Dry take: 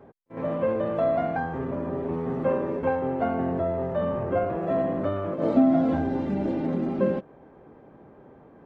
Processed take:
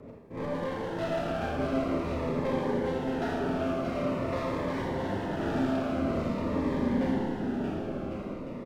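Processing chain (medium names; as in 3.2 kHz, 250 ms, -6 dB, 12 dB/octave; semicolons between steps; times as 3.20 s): 0.95–1.44 s: low-pass 2.8 kHz 24 dB/octave; in parallel at +3 dB: compression, threshold -35 dBFS, peak gain reduction 18.5 dB; on the sum: saturation -24 dBFS, distortion -9 dB; rotary cabinet horn 6.7 Hz, later 0.9 Hz, at 2.03 s; one-sided clip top -43 dBFS; on a send: bouncing-ball echo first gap 630 ms, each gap 0.75×, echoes 5; on the sum: Schroeder reverb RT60 1.2 s, combs from 26 ms, DRR -1.5 dB; Shepard-style phaser falling 0.47 Hz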